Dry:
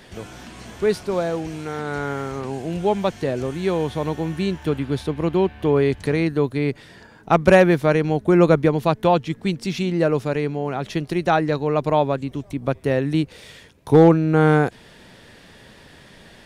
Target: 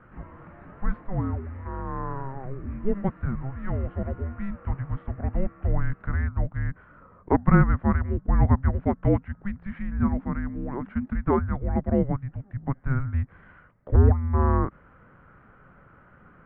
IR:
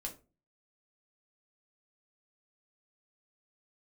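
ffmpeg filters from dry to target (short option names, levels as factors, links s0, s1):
-filter_complex "[0:a]asettb=1/sr,asplit=3[s0][s1][s2];[s0]atrim=end=9.994[s3];[s1]atrim=start=9.99:end=11.15,asetpts=PTS-STARTPTS,afade=t=in:d=0.004:c=qsin,afade=t=out:st=1.156:d=0.004:c=qsin,lowshelf=f=220:t=q:w=3:g=8[s4];[s2]atrim=start=11.146[s5];[s3][s4]acrossfade=d=0.004:c1=hsin:c2=qsin[s6];[s6][s5]acrossfade=d=0.004:c1=qsin:c2=hsin,highpass=f=220:t=q:w=0.5412,highpass=f=220:t=q:w=1.307,lowpass=f=2100:t=q:w=0.5176,lowpass=f=2100:t=q:w=0.7071,lowpass=f=2100:t=q:w=1.932,afreqshift=-400,volume=0.668"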